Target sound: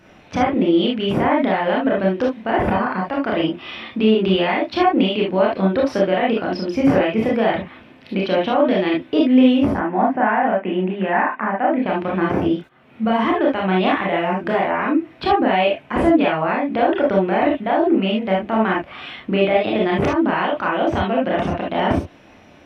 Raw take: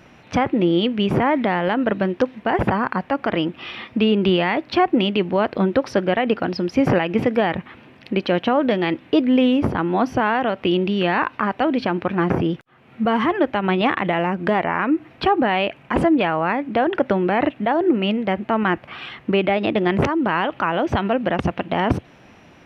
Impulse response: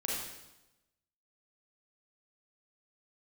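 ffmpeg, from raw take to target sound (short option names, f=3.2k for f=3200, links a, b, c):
-filter_complex "[0:a]asettb=1/sr,asplit=3[a][b][c];[a]atrim=end=9.744[d];[b]atrim=start=9.74:end=11.86,asetpts=PTS-STARTPTS,afade=t=in:d=0.004:c=qsin,afade=t=out:st=2.116:d=0.004:c=qsin,highpass=f=190:w=0.5412,highpass=f=190:w=1.3066,equalizer=f=200:t=q:w=4:g=5,equalizer=f=310:t=q:w=4:g=-4,equalizer=f=460:t=q:w=4:g=-4,equalizer=f=800:t=q:w=4:g=4,equalizer=f=1.3k:t=q:w=4:g=-4,equalizer=f=1.8k:t=q:w=4:g=5,lowpass=f=2.2k:w=0.5412,lowpass=f=2.2k:w=1.3066[e];[c]atrim=start=11.856[f];[d][e]acrossfade=d=0.004:c1=hsin:c2=qsin[g];[g][f]acrossfade=d=0.004:c1=qsin:c2=hsin[h];[1:a]atrim=start_sample=2205,afade=t=out:st=0.15:d=0.01,atrim=end_sample=7056,asetrate=57330,aresample=44100[i];[h][i]afir=irnorm=-1:irlink=0"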